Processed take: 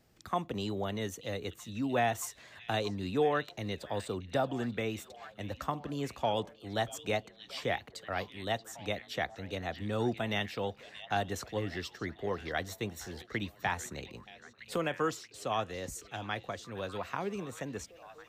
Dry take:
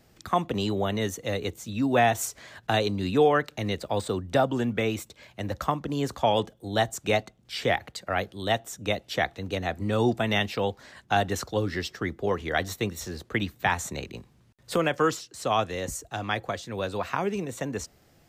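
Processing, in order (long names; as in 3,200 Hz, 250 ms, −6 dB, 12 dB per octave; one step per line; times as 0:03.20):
echo through a band-pass that steps 630 ms, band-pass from 3,600 Hz, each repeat −0.7 octaves, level −10 dB
level −8 dB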